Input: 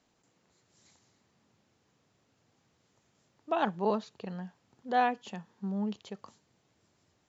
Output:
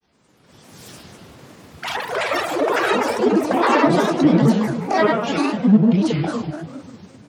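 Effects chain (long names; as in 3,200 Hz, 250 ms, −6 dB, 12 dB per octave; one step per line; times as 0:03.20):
phase-vocoder pitch shift with formants kept +2 semitones
downward compressor 12 to 1, threshold −37 dBFS, peak gain reduction 16 dB
high-pass filter 42 Hz
automatic gain control gain up to 13.5 dB
rectangular room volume 1,800 cubic metres, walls mixed, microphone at 4.6 metres
granular cloud, spray 13 ms, pitch spread up and down by 7 semitones
delay with pitch and tempo change per echo 198 ms, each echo +6 semitones, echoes 3
level +4 dB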